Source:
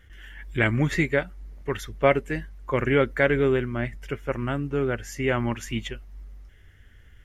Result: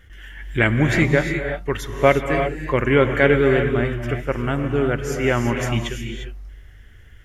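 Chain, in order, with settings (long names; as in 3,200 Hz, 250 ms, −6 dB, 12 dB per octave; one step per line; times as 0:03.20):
reverb whose tail is shaped and stops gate 380 ms rising, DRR 4.5 dB
level +4.5 dB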